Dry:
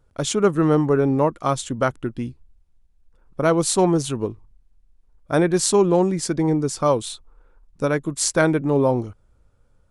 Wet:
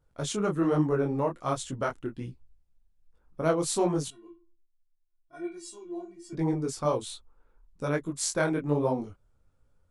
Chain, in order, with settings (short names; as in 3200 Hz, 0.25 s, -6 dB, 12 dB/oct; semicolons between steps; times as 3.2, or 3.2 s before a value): 4.08–6.33 metallic resonator 340 Hz, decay 0.38 s, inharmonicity 0.008; detuned doubles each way 43 cents; gain -4.5 dB